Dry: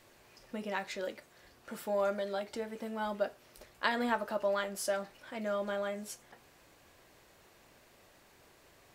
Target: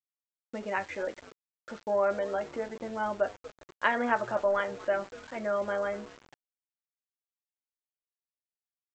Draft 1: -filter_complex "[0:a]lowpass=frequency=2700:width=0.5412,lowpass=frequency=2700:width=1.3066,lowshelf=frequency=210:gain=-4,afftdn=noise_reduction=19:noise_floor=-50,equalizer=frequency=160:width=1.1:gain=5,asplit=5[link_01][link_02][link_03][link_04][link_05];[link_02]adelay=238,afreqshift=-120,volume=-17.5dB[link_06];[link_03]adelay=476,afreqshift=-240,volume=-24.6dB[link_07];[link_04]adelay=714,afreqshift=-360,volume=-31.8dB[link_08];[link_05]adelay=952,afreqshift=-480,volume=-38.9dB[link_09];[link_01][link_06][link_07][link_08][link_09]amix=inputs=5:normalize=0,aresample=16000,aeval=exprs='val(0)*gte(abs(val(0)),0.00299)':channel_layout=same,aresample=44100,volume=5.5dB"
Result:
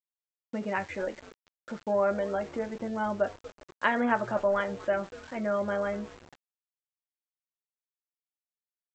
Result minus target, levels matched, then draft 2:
125 Hz band +6.0 dB
-filter_complex "[0:a]lowpass=frequency=2700:width=0.5412,lowpass=frequency=2700:width=1.3066,lowshelf=frequency=210:gain=-4,afftdn=noise_reduction=19:noise_floor=-50,equalizer=frequency=160:width=1.1:gain=-4.5,asplit=5[link_01][link_02][link_03][link_04][link_05];[link_02]adelay=238,afreqshift=-120,volume=-17.5dB[link_06];[link_03]adelay=476,afreqshift=-240,volume=-24.6dB[link_07];[link_04]adelay=714,afreqshift=-360,volume=-31.8dB[link_08];[link_05]adelay=952,afreqshift=-480,volume=-38.9dB[link_09];[link_01][link_06][link_07][link_08][link_09]amix=inputs=5:normalize=0,aresample=16000,aeval=exprs='val(0)*gte(abs(val(0)),0.00299)':channel_layout=same,aresample=44100,volume=5.5dB"

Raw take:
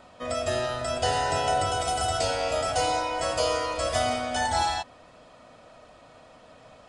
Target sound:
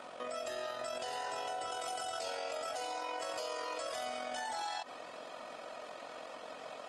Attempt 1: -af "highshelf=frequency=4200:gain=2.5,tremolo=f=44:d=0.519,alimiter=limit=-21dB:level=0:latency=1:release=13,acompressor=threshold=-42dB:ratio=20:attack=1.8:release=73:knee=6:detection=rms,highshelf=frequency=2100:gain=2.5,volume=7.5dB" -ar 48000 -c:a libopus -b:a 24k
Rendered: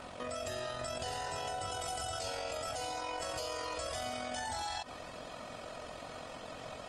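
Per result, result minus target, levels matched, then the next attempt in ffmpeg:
250 Hz band +4.5 dB; 8,000 Hz band +3.0 dB
-af "highshelf=frequency=4200:gain=2.5,tremolo=f=44:d=0.519,alimiter=limit=-21dB:level=0:latency=1:release=13,acompressor=threshold=-42dB:ratio=20:attack=1.8:release=73:knee=6:detection=rms,highpass=340,highshelf=frequency=2100:gain=2.5,volume=7.5dB" -ar 48000 -c:a libopus -b:a 24k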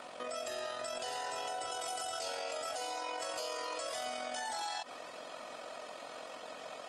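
8,000 Hz band +3.5 dB
-af "highshelf=frequency=4200:gain=-3.5,tremolo=f=44:d=0.519,alimiter=limit=-21dB:level=0:latency=1:release=13,acompressor=threshold=-42dB:ratio=20:attack=1.8:release=73:knee=6:detection=rms,highpass=340,highshelf=frequency=2100:gain=2.5,volume=7.5dB" -ar 48000 -c:a libopus -b:a 24k

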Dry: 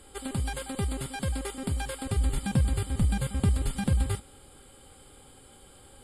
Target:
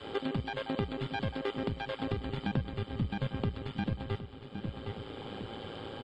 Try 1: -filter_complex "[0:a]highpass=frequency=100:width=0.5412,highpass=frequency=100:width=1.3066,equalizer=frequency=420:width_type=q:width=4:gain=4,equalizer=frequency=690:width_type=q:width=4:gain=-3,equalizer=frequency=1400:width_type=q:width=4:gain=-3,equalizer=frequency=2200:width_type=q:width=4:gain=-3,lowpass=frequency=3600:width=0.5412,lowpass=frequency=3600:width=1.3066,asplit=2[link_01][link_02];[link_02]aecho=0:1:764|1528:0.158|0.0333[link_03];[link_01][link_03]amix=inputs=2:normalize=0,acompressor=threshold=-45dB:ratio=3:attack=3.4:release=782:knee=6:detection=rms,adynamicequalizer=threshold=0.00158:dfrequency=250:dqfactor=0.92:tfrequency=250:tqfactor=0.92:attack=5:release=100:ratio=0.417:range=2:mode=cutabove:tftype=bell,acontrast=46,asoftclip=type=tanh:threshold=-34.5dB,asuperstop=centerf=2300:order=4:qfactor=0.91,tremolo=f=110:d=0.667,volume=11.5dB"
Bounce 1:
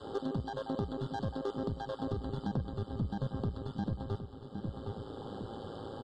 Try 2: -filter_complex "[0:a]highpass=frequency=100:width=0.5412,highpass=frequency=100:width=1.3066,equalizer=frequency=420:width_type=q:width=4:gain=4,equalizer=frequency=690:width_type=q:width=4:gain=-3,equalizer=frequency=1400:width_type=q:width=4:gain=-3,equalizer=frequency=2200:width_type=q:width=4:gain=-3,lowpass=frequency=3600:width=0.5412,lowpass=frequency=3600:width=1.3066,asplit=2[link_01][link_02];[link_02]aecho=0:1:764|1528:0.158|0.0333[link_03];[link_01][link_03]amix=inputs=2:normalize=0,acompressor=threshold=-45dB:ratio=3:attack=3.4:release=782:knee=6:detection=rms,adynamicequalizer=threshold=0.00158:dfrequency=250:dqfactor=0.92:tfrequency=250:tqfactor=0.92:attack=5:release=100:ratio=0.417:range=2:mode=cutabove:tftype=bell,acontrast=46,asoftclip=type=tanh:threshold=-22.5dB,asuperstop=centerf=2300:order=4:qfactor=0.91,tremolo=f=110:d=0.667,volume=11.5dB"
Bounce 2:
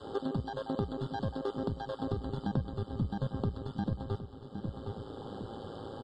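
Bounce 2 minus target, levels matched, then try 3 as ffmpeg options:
2,000 Hz band −9.0 dB
-filter_complex "[0:a]highpass=frequency=100:width=0.5412,highpass=frequency=100:width=1.3066,equalizer=frequency=420:width_type=q:width=4:gain=4,equalizer=frequency=690:width_type=q:width=4:gain=-3,equalizer=frequency=1400:width_type=q:width=4:gain=-3,equalizer=frequency=2200:width_type=q:width=4:gain=-3,lowpass=frequency=3600:width=0.5412,lowpass=frequency=3600:width=1.3066,asplit=2[link_01][link_02];[link_02]aecho=0:1:764|1528:0.158|0.0333[link_03];[link_01][link_03]amix=inputs=2:normalize=0,acompressor=threshold=-45dB:ratio=3:attack=3.4:release=782:knee=6:detection=rms,adynamicequalizer=threshold=0.00158:dfrequency=250:dqfactor=0.92:tfrequency=250:tqfactor=0.92:attack=5:release=100:ratio=0.417:range=2:mode=cutabove:tftype=bell,acontrast=46,asoftclip=type=tanh:threshold=-22.5dB,tremolo=f=110:d=0.667,volume=11.5dB"

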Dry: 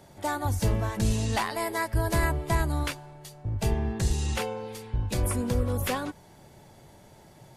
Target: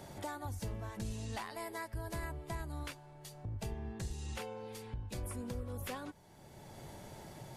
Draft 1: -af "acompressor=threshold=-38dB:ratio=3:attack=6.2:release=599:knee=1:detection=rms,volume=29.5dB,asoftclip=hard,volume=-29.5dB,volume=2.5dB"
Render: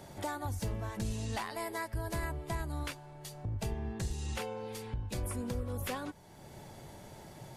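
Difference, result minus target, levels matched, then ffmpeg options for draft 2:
downward compressor: peak gain reduction −4.5 dB
-af "acompressor=threshold=-45dB:ratio=3:attack=6.2:release=599:knee=1:detection=rms,volume=29.5dB,asoftclip=hard,volume=-29.5dB,volume=2.5dB"

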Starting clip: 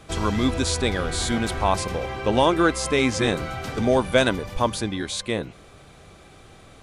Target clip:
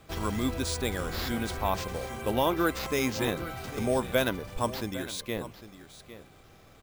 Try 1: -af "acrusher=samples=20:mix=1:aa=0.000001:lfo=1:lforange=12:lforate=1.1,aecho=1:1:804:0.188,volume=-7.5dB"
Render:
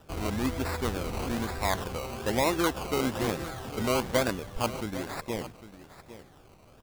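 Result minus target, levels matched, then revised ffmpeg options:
sample-and-hold swept by an LFO: distortion +11 dB
-af "acrusher=samples=4:mix=1:aa=0.000001:lfo=1:lforange=2.4:lforate=1.1,aecho=1:1:804:0.188,volume=-7.5dB"

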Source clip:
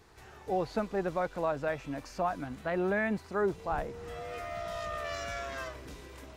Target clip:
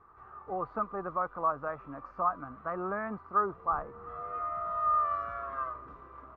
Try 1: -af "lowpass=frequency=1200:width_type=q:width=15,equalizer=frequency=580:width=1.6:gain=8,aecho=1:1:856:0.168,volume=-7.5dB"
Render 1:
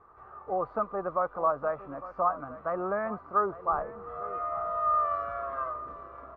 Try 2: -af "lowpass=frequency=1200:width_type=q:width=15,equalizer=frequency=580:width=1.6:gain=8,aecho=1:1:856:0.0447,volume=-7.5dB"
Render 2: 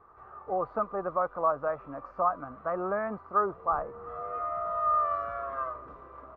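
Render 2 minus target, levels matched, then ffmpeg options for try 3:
500 Hz band +4.0 dB
-af "lowpass=frequency=1200:width_type=q:width=15,aecho=1:1:856:0.0447,volume=-7.5dB"

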